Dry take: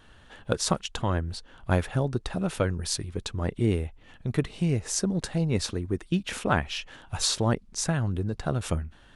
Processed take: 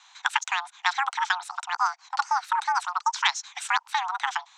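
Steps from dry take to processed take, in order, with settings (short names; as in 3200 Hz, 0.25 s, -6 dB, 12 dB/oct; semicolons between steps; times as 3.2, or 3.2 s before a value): mistuned SSB +270 Hz 150–3300 Hz; speed mistake 7.5 ips tape played at 15 ips; gain +3 dB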